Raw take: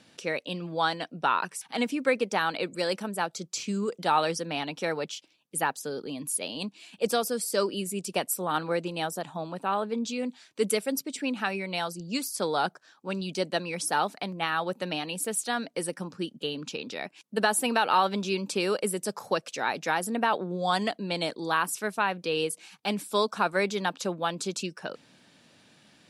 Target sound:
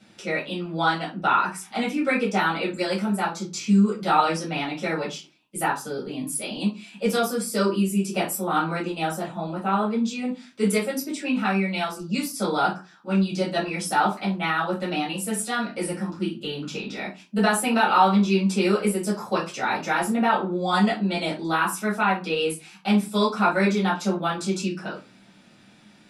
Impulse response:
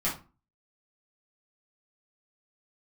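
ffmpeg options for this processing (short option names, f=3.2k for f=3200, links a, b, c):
-filter_complex "[0:a]asettb=1/sr,asplit=3[a][b][c];[a]atrim=end=15.244[d];[b]atrim=start=15.24:end=16.95,asetpts=PTS-STARTPTS,afade=t=in:d=0.004:c=qsin,afade=t=out:st=1.706:d=0.004:c=qsin,asplit=2[e][f];[f]adelay=41,volume=-9.5dB[g];[e][g]amix=inputs=2:normalize=0,atrim=end_sample=75411[h];[c]atrim=start=16.946[i];[d][h]acrossfade=d=0.004:c1=hsin:c2=qsin[j];[j][i]acrossfade=d=0.004:c1=qsin:c2=hsin[k];[1:a]atrim=start_sample=2205,asetrate=48510,aresample=44100[l];[k][l]afir=irnorm=-1:irlink=0,volume=-3dB"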